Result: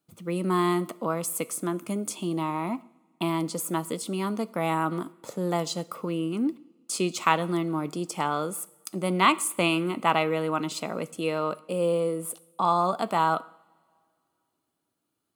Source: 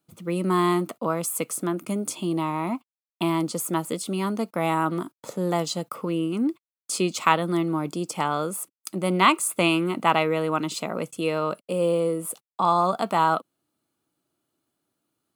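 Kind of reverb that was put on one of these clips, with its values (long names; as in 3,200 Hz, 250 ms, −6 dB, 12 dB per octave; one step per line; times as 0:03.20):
coupled-rooms reverb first 0.68 s, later 2.3 s, DRR 17 dB
level −2.5 dB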